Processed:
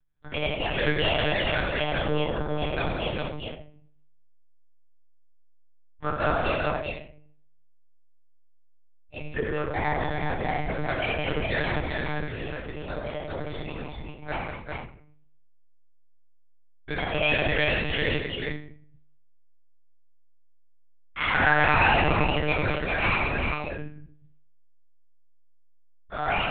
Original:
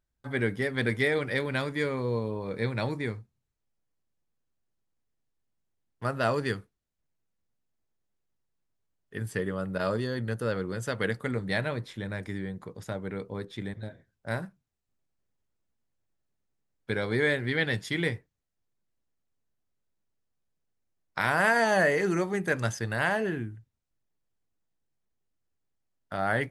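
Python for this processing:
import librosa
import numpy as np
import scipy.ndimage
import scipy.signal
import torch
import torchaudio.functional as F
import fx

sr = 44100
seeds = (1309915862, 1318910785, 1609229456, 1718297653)

p1 = fx.pitch_trill(x, sr, semitones=6.5, every_ms=333)
p2 = fx.peak_eq(p1, sr, hz=260.0, db=-5.5, octaves=2.4)
p3 = 10.0 ** (-24.5 / 20.0) * (np.abs((p2 / 10.0 ** (-24.5 / 20.0) + 3.0) % 4.0 - 2.0) - 1.0)
p4 = p2 + (p3 * librosa.db_to_amplitude(-11.0))
p5 = fx.echo_multitap(p4, sr, ms=(90, 178, 395), db=(-7.0, -7.5, -3.5))
p6 = fx.room_shoebox(p5, sr, seeds[0], volume_m3=64.0, walls='mixed', distance_m=0.79)
p7 = fx.lpc_monotone(p6, sr, seeds[1], pitch_hz=150.0, order=10)
y = p7 * librosa.db_to_amplitude(-1.5)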